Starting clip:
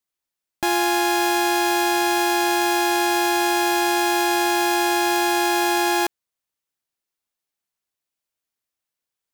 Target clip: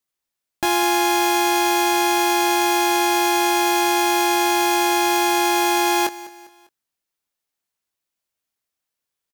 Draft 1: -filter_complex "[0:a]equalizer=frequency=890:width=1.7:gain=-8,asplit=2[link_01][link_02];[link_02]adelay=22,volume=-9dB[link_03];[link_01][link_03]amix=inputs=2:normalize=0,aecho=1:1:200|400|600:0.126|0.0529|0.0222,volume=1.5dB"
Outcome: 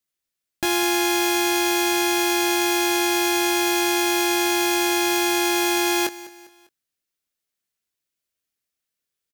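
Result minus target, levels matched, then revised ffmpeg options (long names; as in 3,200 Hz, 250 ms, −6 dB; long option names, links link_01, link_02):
1,000 Hz band −5.0 dB
-filter_complex "[0:a]asplit=2[link_01][link_02];[link_02]adelay=22,volume=-9dB[link_03];[link_01][link_03]amix=inputs=2:normalize=0,aecho=1:1:200|400|600:0.126|0.0529|0.0222,volume=1.5dB"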